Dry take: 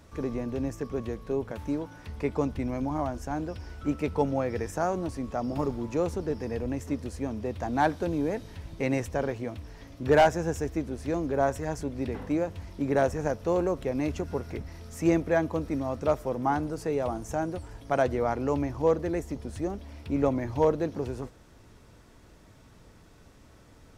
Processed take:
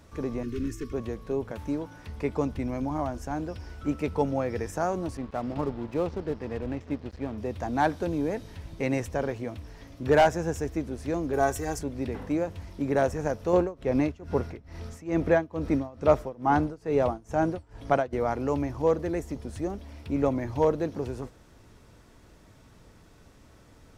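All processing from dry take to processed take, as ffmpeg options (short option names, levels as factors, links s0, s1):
-filter_complex "[0:a]asettb=1/sr,asplit=3[s0][s1][s2];[s0]atrim=end=0.434[s3];[s1]atrim=start=0.43:end=0.93,asetpts=PTS-STARTPTS,afade=t=in:d=0.004:c=qsin,afade=t=out:st=0.496:d=0.004:c=qsin,aecho=1:1:2.8:0.96,atrim=end_sample=22050,aeval=exprs='clip(val(0),-1,0.0316)':c=same,asuperstop=centerf=750:order=4:qfactor=0.71[s4];[s2]atrim=start=0.926[s5];[s3][s4]acrossfade=d=0.004:c1=hsin:c2=qsin[s6];[s6][s5]acrossfade=d=0.004:c1=qsin:c2=hsin,asettb=1/sr,asplit=3[s7][s8][s9];[s7]atrim=end=5.174[s10];[s8]atrim=start=5.17:end=7.38,asetpts=PTS-STARTPTS,afade=t=in:d=0.004:c=qsin,afade=t=out:st=2.206:d=0.004:c=qsin,lowpass=f=4300:w=0.5412,lowpass=f=4300:w=1.3066,aeval=exprs='sgn(val(0))*max(abs(val(0))-0.00562,0)':c=same[s11];[s9]atrim=start=7.376[s12];[s10][s11]acrossfade=d=0.004:c1=hsin:c2=qsin[s13];[s13][s12]acrossfade=d=0.004:c1=qsin:c2=hsin,asettb=1/sr,asplit=3[s14][s15][s16];[s14]atrim=end=11.334[s17];[s15]atrim=start=11.33:end=11.79,asetpts=PTS-STARTPTS,afade=t=in:d=0.004:c=qsin,afade=t=out:st=0.456:d=0.004:c=qsin,highshelf=f=6000:g=11.5,aecho=1:1:2.6:0.56,atrim=end_sample=20286[s18];[s16]atrim=start=11.786[s19];[s17][s18]acrossfade=d=0.004:c1=hsin:c2=qsin[s20];[s20][s19]acrossfade=d=0.004:c1=qsin:c2=hsin,asettb=1/sr,asplit=3[s21][s22][s23];[s21]atrim=end=13.534[s24];[s22]atrim=start=13.53:end=18.13,asetpts=PTS-STARTPTS,afade=t=in:d=0.004:c=qsin,afade=t=out:st=4.596:d=0.004:c=qsin,highshelf=f=7000:g=-11,acontrast=50,tremolo=f=2.3:d=0.93[s25];[s23]atrim=start=18.126[s26];[s24][s25]acrossfade=d=0.004:c1=hsin:c2=qsin[s27];[s27][s26]acrossfade=d=0.004:c1=qsin:c2=hsin"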